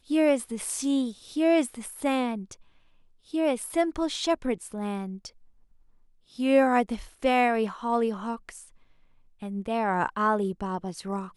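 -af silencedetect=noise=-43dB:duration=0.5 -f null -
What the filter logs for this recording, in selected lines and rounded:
silence_start: 2.54
silence_end: 3.30 | silence_duration: 0.76
silence_start: 5.29
silence_end: 6.32 | silence_duration: 1.03
silence_start: 8.65
silence_end: 9.42 | silence_duration: 0.77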